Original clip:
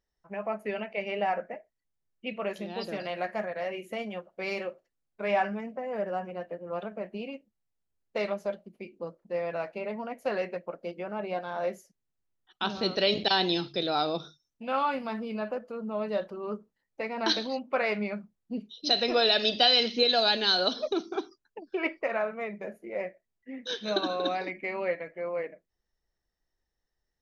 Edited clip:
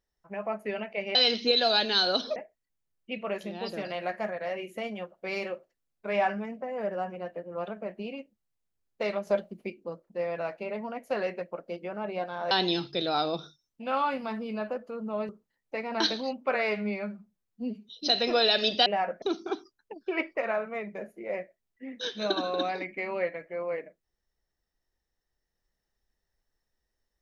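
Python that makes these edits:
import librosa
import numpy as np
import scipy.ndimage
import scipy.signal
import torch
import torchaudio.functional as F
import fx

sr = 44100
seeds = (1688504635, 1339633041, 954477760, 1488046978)

y = fx.edit(x, sr, fx.swap(start_s=1.15, length_s=0.36, other_s=19.67, other_length_s=1.21),
    fx.clip_gain(start_s=8.42, length_s=0.43, db=6.0),
    fx.cut(start_s=11.66, length_s=1.66),
    fx.cut(start_s=16.1, length_s=0.45),
    fx.stretch_span(start_s=17.8, length_s=0.9, factor=1.5), tone=tone)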